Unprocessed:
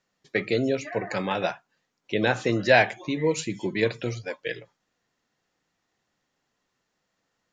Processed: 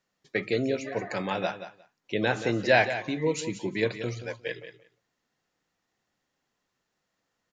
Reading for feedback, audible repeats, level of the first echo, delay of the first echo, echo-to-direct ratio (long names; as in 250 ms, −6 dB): 15%, 2, −11.5 dB, 178 ms, −11.5 dB